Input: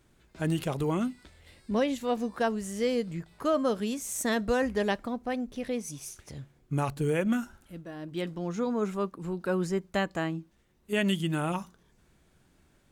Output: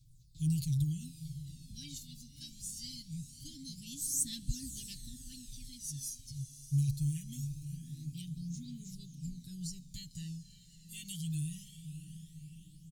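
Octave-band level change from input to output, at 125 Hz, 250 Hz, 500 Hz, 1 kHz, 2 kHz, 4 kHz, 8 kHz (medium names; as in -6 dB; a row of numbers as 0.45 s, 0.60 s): -0.5 dB, -12.0 dB, under -40 dB, under -40 dB, under -25 dB, -6.0 dB, +1.5 dB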